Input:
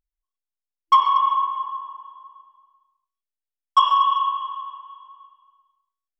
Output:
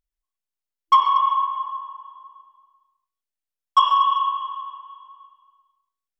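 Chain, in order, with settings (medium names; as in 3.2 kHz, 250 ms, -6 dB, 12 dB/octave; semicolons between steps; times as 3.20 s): 1.19–2.15 s: high-pass 450 Hz 24 dB/octave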